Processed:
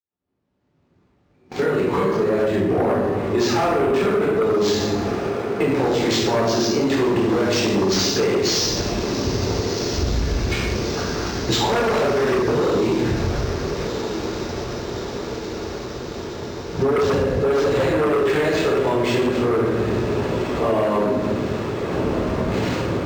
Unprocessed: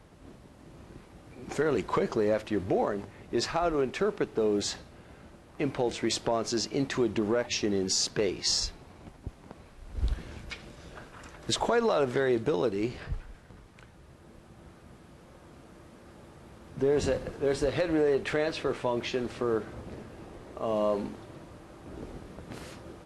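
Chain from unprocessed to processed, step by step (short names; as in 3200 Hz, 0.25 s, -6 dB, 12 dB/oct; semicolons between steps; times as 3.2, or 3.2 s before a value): opening faded in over 3.42 s; shoebox room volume 470 m³, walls mixed, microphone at 4.1 m; gate -36 dBFS, range -22 dB; in parallel at -6 dB: sine folder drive 13 dB, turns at -1 dBFS; on the sum: AGC gain up to 4.5 dB; HPF 62 Hz; on a send: diffused feedback echo 1.377 s, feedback 72%, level -13 dB; on the sum: compressor, threshold -10 dBFS, peak gain reduction 7.5 dB; high shelf 5000 Hz +4.5 dB; decimation joined by straight lines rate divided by 4×; gain -6.5 dB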